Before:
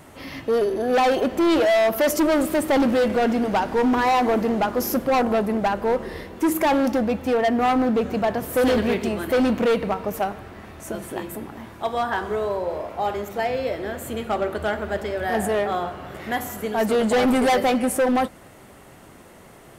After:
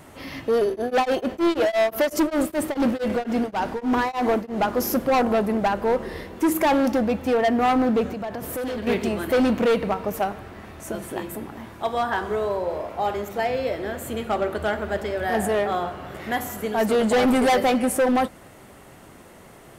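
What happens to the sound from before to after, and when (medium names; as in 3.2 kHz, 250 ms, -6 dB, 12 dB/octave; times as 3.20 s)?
0.67–4.60 s: tremolo of two beating tones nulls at 7.2 Hz -> 2.7 Hz
8.06–8.87 s: compression 10:1, threshold -27 dBFS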